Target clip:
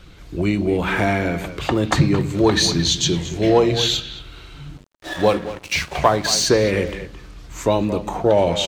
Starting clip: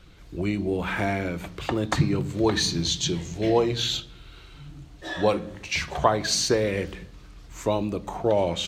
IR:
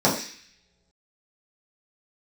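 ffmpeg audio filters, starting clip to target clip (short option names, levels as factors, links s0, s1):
-filter_complex "[0:a]acontrast=79,asplit=2[s0][s1];[s1]adelay=220,highpass=300,lowpass=3400,asoftclip=type=hard:threshold=0.299,volume=0.282[s2];[s0][s2]amix=inputs=2:normalize=0,asettb=1/sr,asplit=3[s3][s4][s5];[s3]atrim=end=4.774[s6];[s4]atrim=start=4.77:end=6.46,asetpts=PTS-STARTPTS,afade=t=in:d=0.004:c=qsin,afade=t=out:st=1.686:d=0.004:c=qsin,aeval=exprs='sgn(val(0))*max(abs(val(0))-0.0237,0)':c=same[s7];[s5]atrim=start=6.456[s8];[s6][s7]acrossfade=d=0.004:c1=hsin:c2=qsin[s9];[s9][s8]acrossfade=d=0.004:c1=qsin:c2=hsin"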